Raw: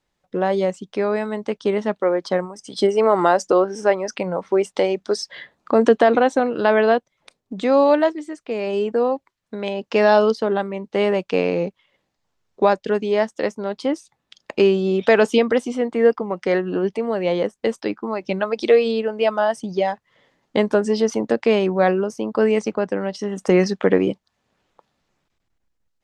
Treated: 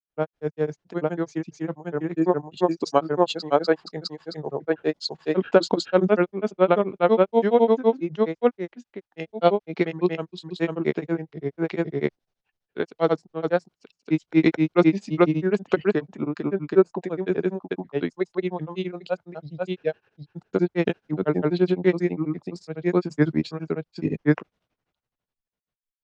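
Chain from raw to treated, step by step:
granular cloud 100 ms, grains 12 per second, spray 794 ms, pitch spread up and down by 0 semitones
pitch shifter −3.5 semitones
multiband upward and downward expander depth 40%
level −1 dB

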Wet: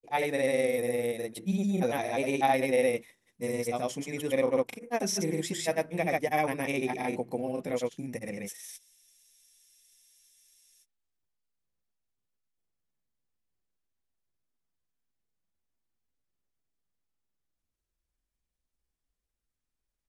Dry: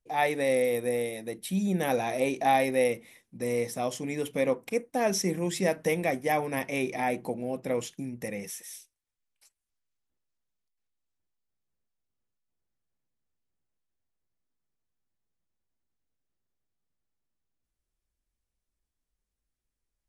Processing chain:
granular cloud 100 ms, pitch spread up and down by 0 semitones
frozen spectrum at 0:08.79, 2.04 s

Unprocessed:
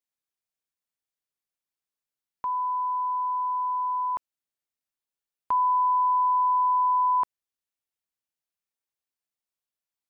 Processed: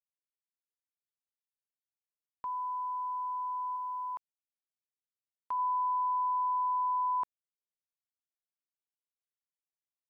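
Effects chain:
0:03.76–0:05.59: low-shelf EQ 410 Hz −11 dB
centre clipping without the shift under −53 dBFS
level −8 dB

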